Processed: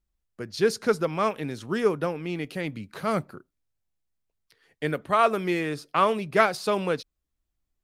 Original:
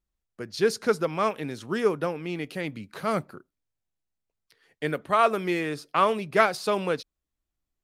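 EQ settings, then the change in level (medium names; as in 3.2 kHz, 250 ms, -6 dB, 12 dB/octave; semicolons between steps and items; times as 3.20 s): bass shelf 130 Hz +5.5 dB; 0.0 dB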